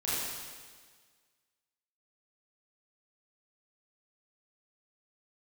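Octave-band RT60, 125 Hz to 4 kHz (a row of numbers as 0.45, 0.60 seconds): 1.6, 1.6, 1.6, 1.6, 1.6, 1.6 seconds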